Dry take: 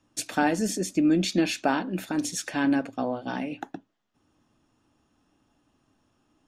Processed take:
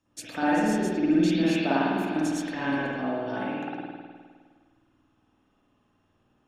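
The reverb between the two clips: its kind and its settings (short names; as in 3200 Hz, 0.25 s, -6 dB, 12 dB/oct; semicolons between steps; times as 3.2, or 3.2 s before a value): spring tank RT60 1.7 s, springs 51 ms, chirp 65 ms, DRR -9 dB; gain -8.5 dB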